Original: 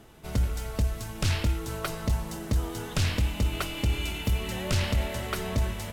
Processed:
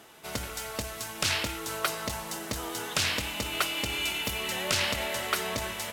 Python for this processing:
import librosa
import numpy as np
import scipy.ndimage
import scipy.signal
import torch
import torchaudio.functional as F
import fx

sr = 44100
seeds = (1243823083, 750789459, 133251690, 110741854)

y = fx.highpass(x, sr, hz=870.0, slope=6)
y = y * librosa.db_to_amplitude(6.0)